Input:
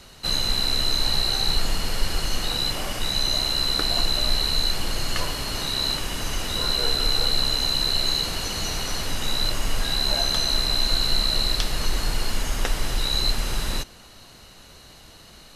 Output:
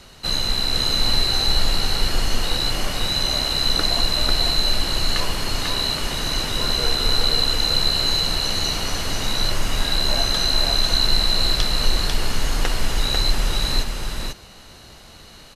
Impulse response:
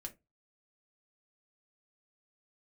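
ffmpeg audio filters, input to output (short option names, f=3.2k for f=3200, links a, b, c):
-af "highshelf=f=7.6k:g=-4,aecho=1:1:495:0.708,volume=2dB"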